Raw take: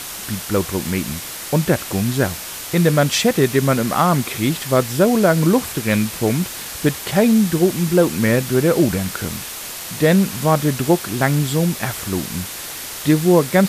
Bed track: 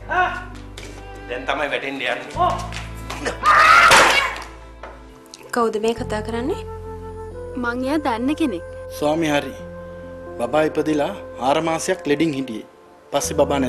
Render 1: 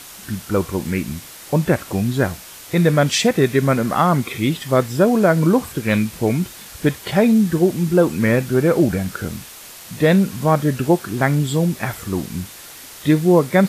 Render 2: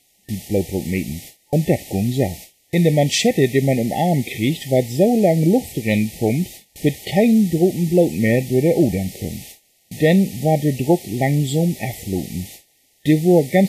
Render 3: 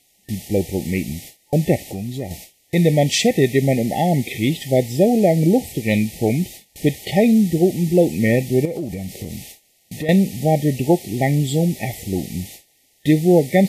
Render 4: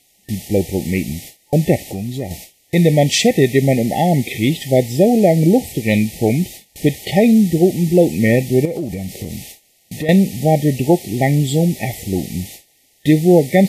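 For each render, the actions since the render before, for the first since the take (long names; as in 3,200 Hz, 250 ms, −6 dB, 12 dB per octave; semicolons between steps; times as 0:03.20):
noise reduction from a noise print 8 dB
noise gate with hold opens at −25 dBFS; brick-wall band-stop 870–1,800 Hz
0:01.88–0:02.31: downward compressor 2 to 1, threshold −29 dBFS; 0:08.65–0:10.09: downward compressor 4 to 1, threshold −24 dBFS
level +3 dB; brickwall limiter −1 dBFS, peak gain reduction 1.5 dB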